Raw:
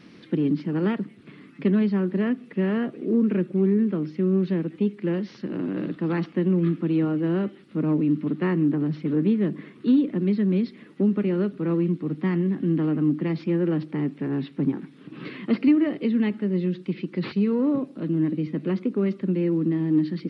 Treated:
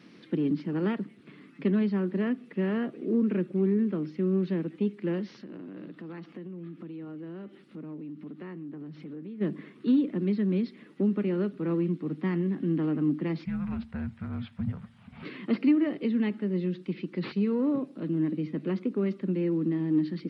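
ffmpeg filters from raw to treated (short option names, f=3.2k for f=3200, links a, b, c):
-filter_complex "[0:a]asplit=3[a][b][c];[a]afade=t=out:st=5.38:d=0.02[d];[b]acompressor=threshold=-36dB:ratio=4:attack=3.2:release=140:knee=1:detection=peak,afade=t=in:st=5.38:d=0.02,afade=t=out:st=9.4:d=0.02[e];[c]afade=t=in:st=9.4:d=0.02[f];[d][e][f]amix=inputs=3:normalize=0,asettb=1/sr,asplit=3[g][h][i];[g]atrim=end=13.454[j];[h]atrim=start=13.45:end=15.23,asetpts=PTS-STARTPTS,afade=t=in:d=0.004:c=qsin,afade=t=out:st=1.776:d=0.004:c=qsin,afreqshift=-380[k];[i]atrim=start=15.226[l];[j][k]acrossfade=d=0.004:c1=hsin:c2=qsin[m];[m][l]acrossfade=d=0.004:c1=qsin:c2=hsin,highpass=130,volume=-4dB"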